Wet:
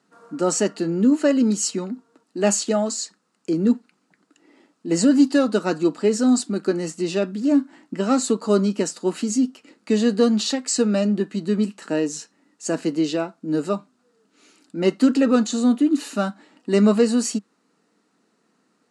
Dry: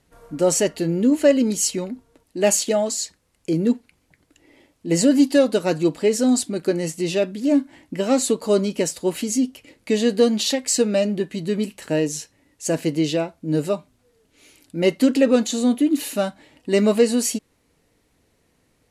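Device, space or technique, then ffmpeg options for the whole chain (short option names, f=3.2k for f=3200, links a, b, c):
television speaker: -af "highpass=f=200:w=0.5412,highpass=f=200:w=1.3066,equalizer=f=200:t=q:w=4:g=7,equalizer=f=550:t=q:w=4:g=-6,equalizer=f=1.3k:t=q:w=4:g=8,equalizer=f=2.2k:t=q:w=4:g=-7,equalizer=f=3.3k:t=q:w=4:g=-6,equalizer=f=6k:t=q:w=4:g=-3,lowpass=f=8.2k:w=0.5412,lowpass=f=8.2k:w=1.3066"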